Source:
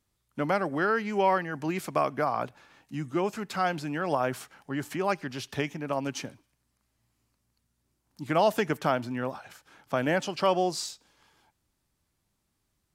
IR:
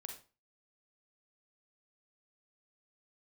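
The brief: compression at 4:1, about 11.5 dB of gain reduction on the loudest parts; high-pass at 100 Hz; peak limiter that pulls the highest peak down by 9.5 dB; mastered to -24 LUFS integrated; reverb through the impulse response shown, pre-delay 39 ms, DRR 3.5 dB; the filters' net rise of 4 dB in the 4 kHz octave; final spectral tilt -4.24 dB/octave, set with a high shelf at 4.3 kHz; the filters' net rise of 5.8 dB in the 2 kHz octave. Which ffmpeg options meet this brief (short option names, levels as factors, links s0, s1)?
-filter_complex "[0:a]highpass=100,equalizer=f=2000:t=o:g=7.5,equalizer=f=4000:t=o:g=5,highshelf=f=4300:g=-4.5,acompressor=threshold=0.0251:ratio=4,alimiter=level_in=1.5:limit=0.0631:level=0:latency=1,volume=0.668,asplit=2[s0][s1];[1:a]atrim=start_sample=2205,adelay=39[s2];[s1][s2]afir=irnorm=-1:irlink=0,volume=1.06[s3];[s0][s3]amix=inputs=2:normalize=0,volume=4.73"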